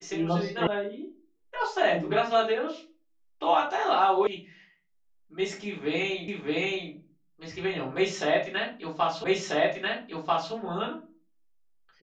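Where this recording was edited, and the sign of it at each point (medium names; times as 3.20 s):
0.67 s: sound stops dead
4.27 s: sound stops dead
6.28 s: repeat of the last 0.62 s
9.24 s: repeat of the last 1.29 s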